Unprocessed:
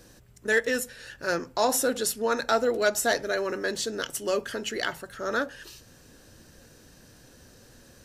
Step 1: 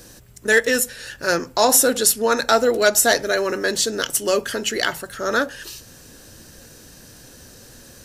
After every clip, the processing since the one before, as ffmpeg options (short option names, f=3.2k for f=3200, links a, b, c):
-af "highshelf=f=4.8k:g=7,volume=7dB"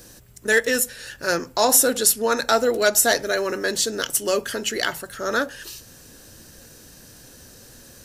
-af "highshelf=f=10k:g=4,volume=-2.5dB"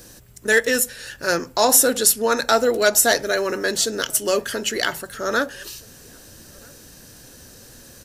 -filter_complex "[0:a]asplit=2[a][b];[b]adelay=1283,volume=-28dB,highshelf=f=4k:g=-28.9[c];[a][c]amix=inputs=2:normalize=0,volume=1.5dB"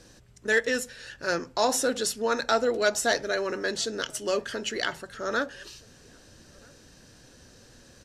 -af "lowpass=5.9k,volume=-6.5dB"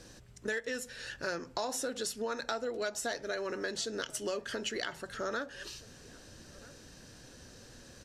-af "acompressor=threshold=-33dB:ratio=6"